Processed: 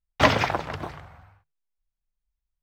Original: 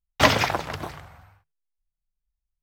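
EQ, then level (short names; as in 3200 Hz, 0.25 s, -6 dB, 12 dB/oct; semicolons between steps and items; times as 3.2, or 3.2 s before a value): LPF 2900 Hz 6 dB/oct; 0.0 dB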